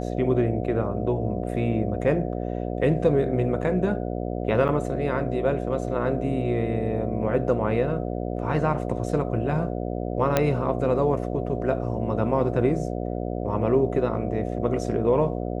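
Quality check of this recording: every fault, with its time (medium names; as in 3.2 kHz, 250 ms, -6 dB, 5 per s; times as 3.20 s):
buzz 60 Hz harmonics 12 -29 dBFS
4.68–4.69 s: dropout 8.2 ms
10.37 s: pop -6 dBFS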